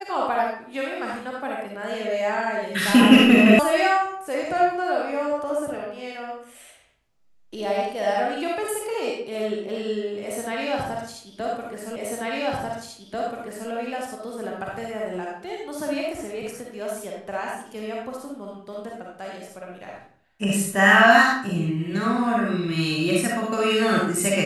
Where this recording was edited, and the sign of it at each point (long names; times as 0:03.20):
0:03.59: cut off before it has died away
0:11.96: the same again, the last 1.74 s